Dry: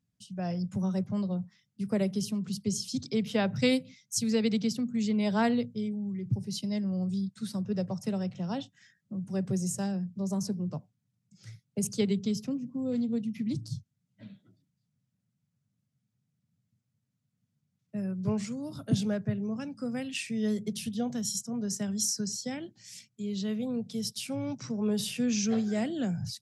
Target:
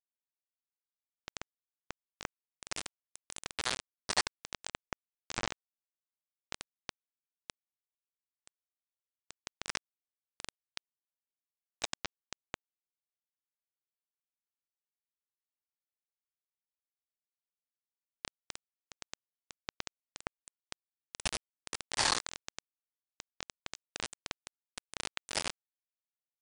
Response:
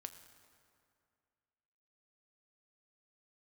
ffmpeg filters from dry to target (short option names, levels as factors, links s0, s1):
-filter_complex "[0:a]afftfilt=real='re':imag='-im':win_size=8192:overlap=0.75,equalizer=f=5800:w=4.2:g=3,acrossover=split=860[s0][s1];[s0]aeval=exprs='(mod(63.1*val(0)+1,2)-1)/63.1':c=same[s2];[s2][s1]amix=inputs=2:normalize=0,afreqshift=-360,asetrate=22050,aresample=44100,atempo=2,aresample=16000,acrusher=bits=4:mix=0:aa=0.000001,aresample=44100,aeval=exprs='val(0)*sin(2*PI*1500*n/s+1500*0.8/0.28*sin(2*PI*0.28*n/s))':c=same,volume=2.37"